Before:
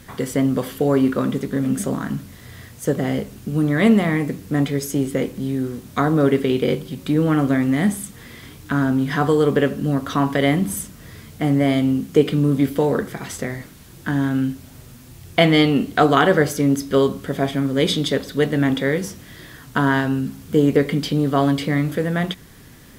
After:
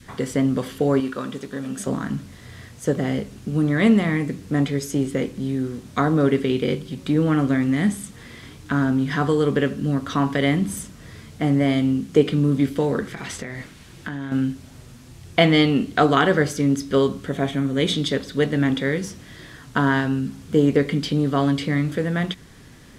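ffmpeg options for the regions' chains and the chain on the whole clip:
-filter_complex "[0:a]asettb=1/sr,asplit=3[a][b][c];[a]atrim=end=1.004[d];[b]atrim=start=1:end=1.87,asetpts=PTS-STARTPTS,afade=t=in:d=0.004:c=qsin,afade=t=out:st=0.866:d=0.004:c=qsin,lowshelf=f=420:g=-11,bandreject=f=2.1k:w=9.6[e];[c]atrim=start=1.866[f];[d][e]acrossfade=d=0.004:c1=hsin:c2=qsin[g];[g][f]acrossfade=d=0.004:c1=qsin:c2=hsin,asettb=1/sr,asplit=3[h][i][j];[h]atrim=end=13.034[k];[i]atrim=start=13.03:end=14.32,asetpts=PTS-STARTPTS,afade=t=in:d=0.004:c=qsin,afade=t=out:st=1.286:d=0.004:c=qsin,equalizer=f=2.4k:t=o:w=1.6:g=5,acompressor=threshold=-25dB:ratio=10:attack=3.2:release=140:knee=1:detection=peak[l];[j]atrim=start=14.316[m];[k][l]acrossfade=d=0.004:c1=hsin:c2=qsin[n];[n][m]acrossfade=d=0.004:c1=qsin:c2=hsin,asettb=1/sr,asplit=3[o][p][q];[o]atrim=end=17.284[r];[p]atrim=start=17.28:end=17.95,asetpts=PTS-STARTPTS,afade=t=in:d=0.004:c=qsin,afade=t=out:st=0.666:d=0.004:c=qsin,bandreject=f=4.9k:w=5.8,aeval=exprs='val(0)+0.00562*sin(2*PI*700*n/s)':c=same[s];[q]atrim=start=17.946[t];[r][s]acrossfade=d=0.004:c1=hsin:c2=qsin[u];[u][t]acrossfade=d=0.004:c1=qsin:c2=hsin,lowpass=8.9k,adynamicequalizer=threshold=0.0251:dfrequency=680:dqfactor=1:tfrequency=680:tqfactor=1:attack=5:release=100:ratio=0.375:range=3:mode=cutabove:tftype=bell,volume=-1dB"

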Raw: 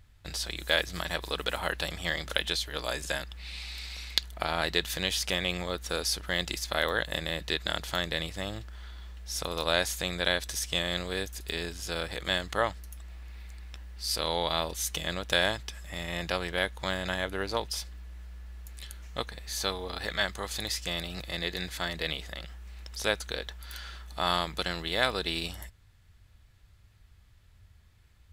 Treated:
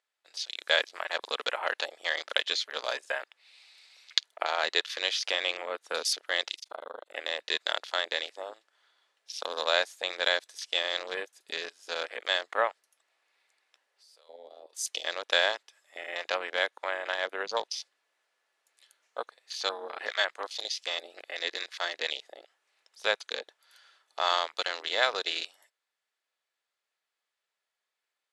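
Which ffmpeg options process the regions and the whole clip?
-filter_complex "[0:a]asettb=1/sr,asplit=3[a][b][c];[a]atrim=end=6.554[d];[b]atrim=start=6.55:end=7.16,asetpts=PTS-STARTPTS,afade=t=in:d=0.004:c=qsin,afade=t=out:st=0.606:d=0.004:c=qsin,tremolo=f=25:d=0.974,acompressor=threshold=-34dB:ratio=4:attack=3.2:release=140:knee=1:detection=peak,asuperstop=centerf=1700:order=4:qfactor=7.2[e];[c]atrim=start=7.156[f];[d][e]acrossfade=d=0.004:c1=hsin:c2=qsin[g];[g][f]acrossfade=d=0.004:c1=qsin:c2=hsin,asettb=1/sr,asplit=3[h][i][j];[h]atrim=end=13.864[k];[i]atrim=start=13.86:end=14.73,asetpts=PTS-STARTPTS,afade=t=in:d=0.004:c=qsin,afade=t=out:st=0.866:d=0.004:c=qsin,aeval=exprs='(tanh(7.08*val(0)+0.35)-tanh(0.35))/7.08':c=same,highpass=f=440:t=q:w=1.6,acompressor=threshold=-42dB:ratio=6:attack=3.2:release=140:knee=1:detection=peak[l];[j]atrim=start=14.726[m];[k][l]acrossfade=d=0.004:c1=hsin:c2=qsin[n];[n][m]acrossfade=d=0.004:c1=qsin:c2=hsin,highpass=f=460:w=0.5412,highpass=f=460:w=1.3066,afwtdn=0.0126,lowpass=f=11k:w=0.5412,lowpass=f=11k:w=1.3066,volume=1.5dB"

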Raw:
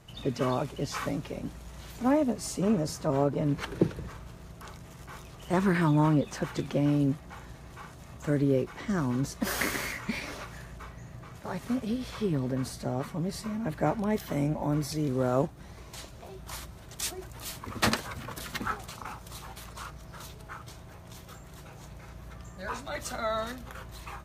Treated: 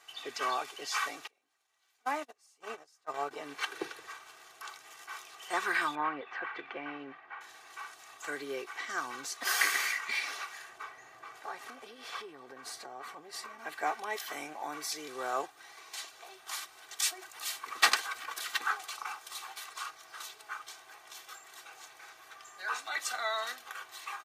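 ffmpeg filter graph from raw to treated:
-filter_complex "[0:a]asettb=1/sr,asplit=3[a][b][c];[a]atrim=end=1.274[d];[b]atrim=start=1.27:end=3.31,asetpts=PTS-STARTPTS,afade=t=in:d=0.004:c=qsin,afade=t=out:st=2.036:d=0.004:c=qsin,asubboost=boost=9:cutoff=93,acompressor=mode=upward:threshold=-29dB:ratio=2.5:attack=3.2:release=140:knee=2.83:detection=peak,agate=range=-31dB:threshold=-27dB:ratio=16:release=100:detection=peak[e];[c]atrim=start=3.306[f];[d][e]acrossfade=d=0.004:c1=hsin:c2=qsin[g];[g][f]acrossfade=d=0.004:c1=qsin:c2=hsin,asettb=1/sr,asplit=3[h][i][j];[h]atrim=end=5.954[k];[i]atrim=start=5.95:end=7.41,asetpts=PTS-STARTPTS,afade=t=in:d=0.004:c=qsin,afade=t=out:st=1.456:d=0.004:c=qsin,lowpass=f=2.2k:w=0.5412,lowpass=f=2.2k:w=1.3066,aemphasis=mode=production:type=75fm[l];[j]atrim=start=7.406[m];[k][l]acrossfade=d=0.004:c1=hsin:c2=qsin[n];[n][m]acrossfade=d=0.004:c1=qsin:c2=hsin,asettb=1/sr,asplit=3[o][p][q];[o]atrim=end=10.694[r];[p]atrim=start=10.69:end=13.59,asetpts=PTS-STARTPTS,afade=t=in:d=0.004:c=qsin,afade=t=out:st=2.896:d=0.004:c=qsin,tiltshelf=f=1.5k:g=5,acompressor=threshold=-30dB:ratio=6:attack=3.2:release=140:knee=1:detection=peak[s];[q]atrim=start=13.586[t];[r][s]acrossfade=d=0.004:c1=hsin:c2=qsin[u];[u][t]acrossfade=d=0.004:c1=qsin:c2=hsin,highpass=1.1k,highshelf=f=9.6k:g=-5.5,aecho=1:1:2.6:0.64,volume=3dB"

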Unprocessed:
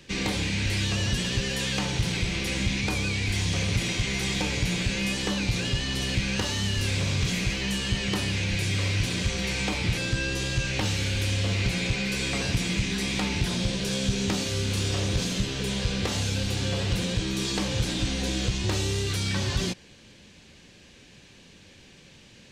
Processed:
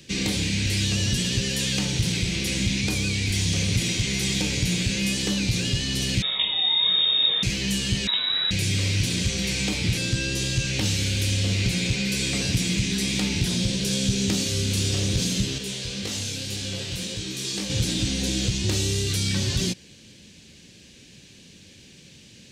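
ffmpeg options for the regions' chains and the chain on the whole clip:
-filter_complex "[0:a]asettb=1/sr,asplit=3[a][b][c];[a]atrim=end=6.224[d];[b]atrim=start=6.22:end=7.43,asetpts=PTS-STARTPTS,afade=t=in:d=0.004:c=qsin,afade=t=out:st=1.206:d=0.004:c=qsin,equalizer=f=2.3k:t=o:w=0.22:g=-15,asplit=2[e][f];[f]adelay=18,volume=-2.5dB[g];[e][g]amix=inputs=2:normalize=0,atrim=end_sample=53361,lowpass=f=3.2k:t=q:w=0.5098,lowpass=f=3.2k:t=q:w=0.6013,lowpass=f=3.2k:t=q:w=0.9,lowpass=f=3.2k:t=q:w=2.563,afreqshift=-3800[h];[c]atrim=start=7.426[i];[d][h]acrossfade=d=0.004:c1=hsin:c2=qsin[j];[j][i]acrossfade=d=0.004:c1=qsin:c2=hsin,asettb=1/sr,asplit=3[k][l][m];[k]atrim=end=8.074[n];[l]atrim=start=8.07:end=8.51,asetpts=PTS-STARTPTS,afade=t=in:d=0.004:c=qsin,afade=t=out:st=0.436:d=0.004:c=qsin,highpass=42,lowpass=f=3.4k:t=q:w=0.5098,lowpass=f=3.4k:t=q:w=0.6013,lowpass=f=3.4k:t=q:w=0.9,lowpass=f=3.4k:t=q:w=2.563,afreqshift=-4000[o];[m]atrim=start=8.506[p];[n][o]acrossfade=d=0.004:c1=hsin:c2=qsin[q];[q][p]acrossfade=d=0.004:c1=qsin:c2=hsin,asettb=1/sr,asplit=3[r][s][t];[r]atrim=end=15.584[u];[s]atrim=start=15.58:end=17.7,asetpts=PTS-STARTPTS,afade=t=in:d=0.004:c=qsin,afade=t=out:st=2.116:d=0.004:c=qsin,lowshelf=f=250:g=-8,flanger=delay=19:depth=4.6:speed=1.9[v];[t]atrim=start=17.696[w];[u][v]acrossfade=d=0.004:c1=hsin:c2=qsin[x];[x][w]acrossfade=d=0.004:c1=qsin:c2=hsin,highpass=f=130:p=1,equalizer=f=1k:w=0.55:g=-14.5,volume=7.5dB"

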